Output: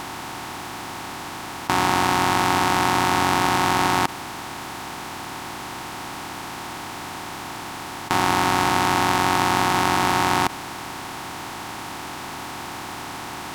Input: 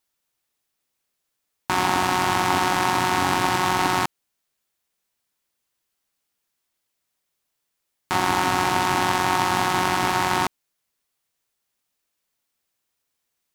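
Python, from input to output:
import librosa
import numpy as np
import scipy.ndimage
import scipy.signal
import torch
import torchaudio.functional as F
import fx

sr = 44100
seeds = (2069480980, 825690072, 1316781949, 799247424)

y = fx.bin_compress(x, sr, power=0.2)
y = y * librosa.db_to_amplitude(-2.5)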